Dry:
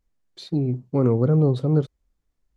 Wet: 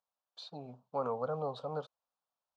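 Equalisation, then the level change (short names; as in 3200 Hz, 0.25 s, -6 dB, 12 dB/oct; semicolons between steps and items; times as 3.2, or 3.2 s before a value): BPF 640–3300 Hz; fixed phaser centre 840 Hz, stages 4; +1.0 dB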